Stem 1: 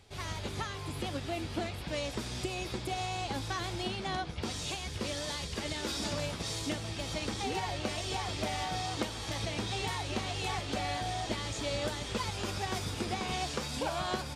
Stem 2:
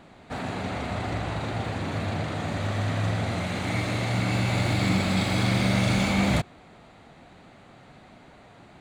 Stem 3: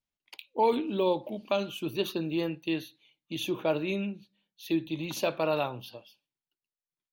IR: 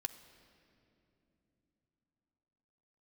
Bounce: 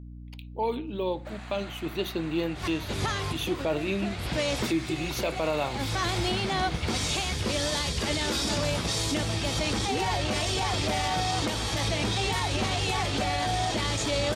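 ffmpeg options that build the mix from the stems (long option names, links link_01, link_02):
-filter_complex "[0:a]adelay=2450,volume=3dB[link_01];[1:a]alimiter=limit=-18dB:level=0:latency=1,highpass=1100,adelay=950,volume=-11dB,asplit=2[link_02][link_03];[link_03]volume=-4dB[link_04];[2:a]volume=-5dB,asplit=3[link_05][link_06][link_07];[link_06]volume=-20.5dB[link_08];[link_07]apad=whole_len=741081[link_09];[link_01][link_09]sidechaincompress=threshold=-47dB:ratio=8:attack=28:release=205[link_10];[link_10][link_05]amix=inputs=2:normalize=0,dynaudnorm=framelen=200:gausssize=17:maxgain=6.5dB,alimiter=limit=-19dB:level=0:latency=1:release=13,volume=0dB[link_11];[3:a]atrim=start_sample=2205[link_12];[link_04][link_08]amix=inputs=2:normalize=0[link_13];[link_13][link_12]afir=irnorm=-1:irlink=0[link_14];[link_02][link_11][link_14]amix=inputs=3:normalize=0,aeval=exprs='val(0)+0.00891*(sin(2*PI*60*n/s)+sin(2*PI*2*60*n/s)/2+sin(2*PI*3*60*n/s)/3+sin(2*PI*4*60*n/s)/4+sin(2*PI*5*60*n/s)/5)':channel_layout=same"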